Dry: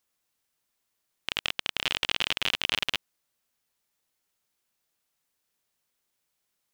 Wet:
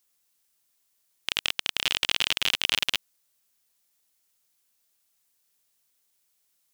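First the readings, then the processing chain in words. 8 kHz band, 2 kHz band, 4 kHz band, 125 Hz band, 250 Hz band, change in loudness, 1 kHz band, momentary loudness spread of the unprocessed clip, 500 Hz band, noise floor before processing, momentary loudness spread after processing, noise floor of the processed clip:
+7.0 dB, +1.5 dB, +3.0 dB, -1.5 dB, -1.5 dB, +2.5 dB, -0.5 dB, 7 LU, -1.5 dB, -80 dBFS, 7 LU, -72 dBFS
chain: treble shelf 3.6 kHz +10.5 dB; trim -1.5 dB

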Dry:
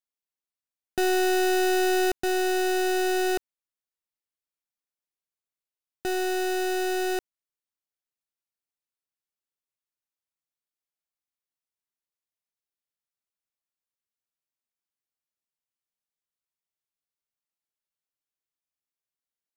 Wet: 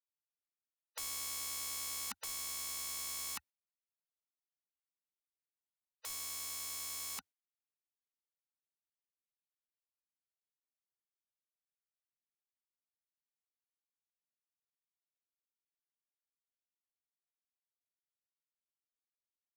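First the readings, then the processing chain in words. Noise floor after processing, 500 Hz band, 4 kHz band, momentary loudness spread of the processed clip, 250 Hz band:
under -85 dBFS, -39.5 dB, -10.5 dB, 6 LU, -37.5 dB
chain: valve stage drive 29 dB, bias 0.75; spectral gate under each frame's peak -25 dB weak; trim +4.5 dB

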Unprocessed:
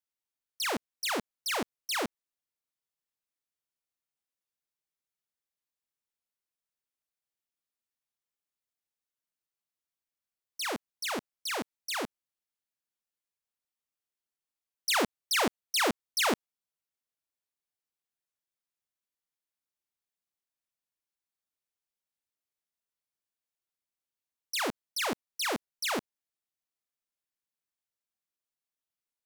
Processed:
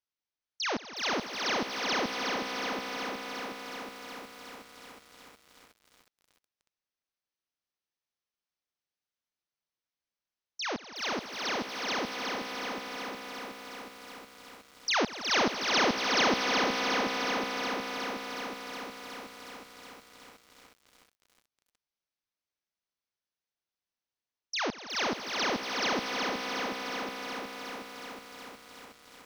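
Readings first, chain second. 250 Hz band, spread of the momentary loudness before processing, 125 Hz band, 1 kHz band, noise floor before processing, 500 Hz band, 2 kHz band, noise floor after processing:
+4.0 dB, 8 LU, +3.5 dB, +5.0 dB, under -85 dBFS, +4.5 dB, +4.5 dB, under -85 dBFS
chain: brick-wall FIR low-pass 6.5 kHz; echo with a slow build-up 83 ms, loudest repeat 5, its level -15 dB; bit-crushed delay 366 ms, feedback 80%, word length 9-bit, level -5 dB

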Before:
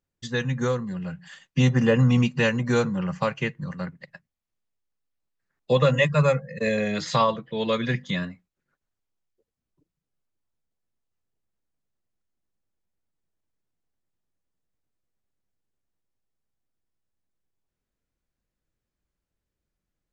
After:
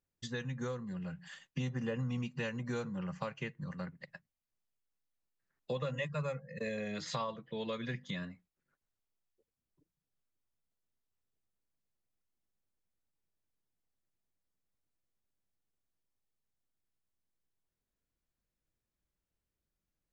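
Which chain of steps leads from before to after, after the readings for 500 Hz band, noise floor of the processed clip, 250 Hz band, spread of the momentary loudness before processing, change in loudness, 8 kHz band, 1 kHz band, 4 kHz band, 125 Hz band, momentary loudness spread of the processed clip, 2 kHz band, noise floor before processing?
-16.0 dB, under -85 dBFS, -14.5 dB, 14 LU, -15.5 dB, no reading, -16.0 dB, -14.0 dB, -16.0 dB, 9 LU, -15.0 dB, under -85 dBFS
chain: compression 2.5:1, threshold -34 dBFS, peak gain reduction 13 dB; trim -5.5 dB

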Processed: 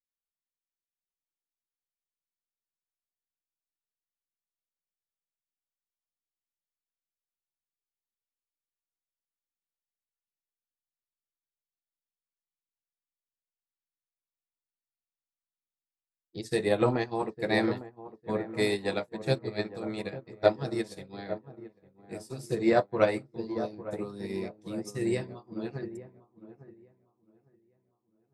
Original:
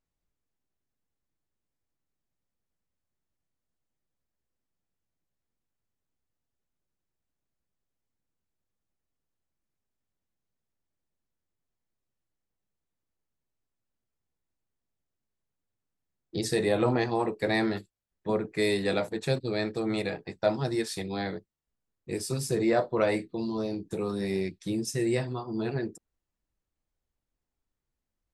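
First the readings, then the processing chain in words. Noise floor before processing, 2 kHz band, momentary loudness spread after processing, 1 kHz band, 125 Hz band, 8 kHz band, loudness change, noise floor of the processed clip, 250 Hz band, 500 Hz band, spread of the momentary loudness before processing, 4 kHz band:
under -85 dBFS, -1.5 dB, 17 LU, -0.5 dB, -3.0 dB, -9.0 dB, -1.5 dB, under -85 dBFS, -2.5 dB, -0.5 dB, 9 LU, -3.5 dB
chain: on a send: feedback echo behind a low-pass 854 ms, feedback 51%, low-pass 1.3 kHz, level -5.5 dB; on the sum: upward expansion 2.5:1, over -41 dBFS; trim +5 dB

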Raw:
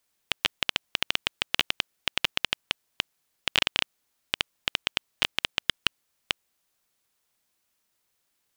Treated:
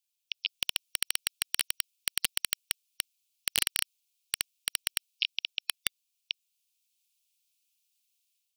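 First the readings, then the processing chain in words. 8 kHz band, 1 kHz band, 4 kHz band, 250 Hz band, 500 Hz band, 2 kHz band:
+8.0 dB, -12.0 dB, -5.0 dB, -12.0 dB, -13.5 dB, -7.0 dB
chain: spectral gate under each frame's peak -20 dB strong; steep high-pass 2.4 kHz 72 dB/octave; level rider gain up to 7 dB; integer overflow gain 4 dB; trim -7.5 dB

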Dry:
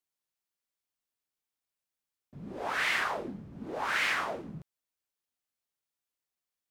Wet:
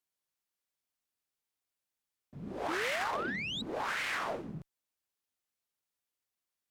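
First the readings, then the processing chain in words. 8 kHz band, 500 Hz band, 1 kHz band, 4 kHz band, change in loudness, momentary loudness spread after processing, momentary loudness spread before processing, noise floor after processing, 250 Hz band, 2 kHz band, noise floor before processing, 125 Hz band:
-2.5 dB, +1.0 dB, -2.0 dB, -2.0 dB, -3.5 dB, 13 LU, 18 LU, under -85 dBFS, +0.5 dB, -4.5 dB, under -85 dBFS, 0.0 dB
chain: peak limiter -26.5 dBFS, peak gain reduction 9 dB; painted sound rise, 2.68–3.62 s, 300–4000 Hz -38 dBFS; Chebyshev shaper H 2 -14 dB, 4 -16 dB, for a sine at -26 dBFS

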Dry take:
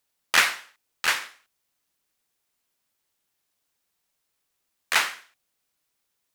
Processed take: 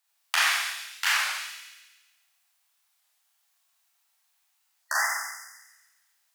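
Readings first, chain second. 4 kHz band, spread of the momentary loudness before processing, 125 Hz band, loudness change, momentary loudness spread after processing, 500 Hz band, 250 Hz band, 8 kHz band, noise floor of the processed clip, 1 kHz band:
-1.0 dB, 13 LU, no reading, -3.0 dB, 15 LU, -6.5 dB, under -30 dB, 0.0 dB, -72 dBFS, -0.5 dB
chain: elliptic high-pass 690 Hz, stop band 40 dB; compression, threshold -24 dBFS, peak gain reduction 10.5 dB; spectral selection erased 4.80–5.56 s, 2.1–4.8 kHz; feedback echo behind a high-pass 138 ms, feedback 49%, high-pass 2.9 kHz, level -6 dB; Schroeder reverb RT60 0.83 s, combs from 28 ms, DRR -4.5 dB; warped record 33 1/3 rpm, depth 160 cents

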